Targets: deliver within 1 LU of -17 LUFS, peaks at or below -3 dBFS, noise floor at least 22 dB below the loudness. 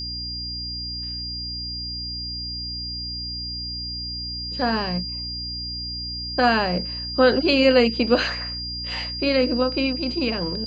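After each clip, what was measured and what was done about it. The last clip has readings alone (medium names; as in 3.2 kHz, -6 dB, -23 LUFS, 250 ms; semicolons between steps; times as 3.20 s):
hum 60 Hz; highest harmonic 300 Hz; hum level -34 dBFS; steady tone 4.8 kHz; tone level -29 dBFS; loudness -23.5 LUFS; peak level -6.0 dBFS; loudness target -17.0 LUFS
-> de-hum 60 Hz, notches 5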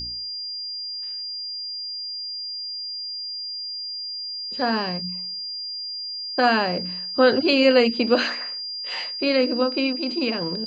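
hum not found; steady tone 4.8 kHz; tone level -29 dBFS
-> band-stop 4.8 kHz, Q 30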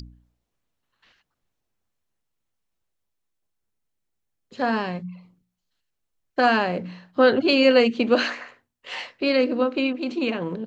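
steady tone not found; loudness -21.5 LUFS; peak level -5.5 dBFS; loudness target -17.0 LUFS
-> trim +4.5 dB; peak limiter -3 dBFS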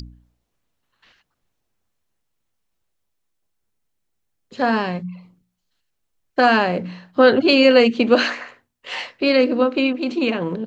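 loudness -17.5 LUFS; peak level -3.0 dBFS; noise floor -75 dBFS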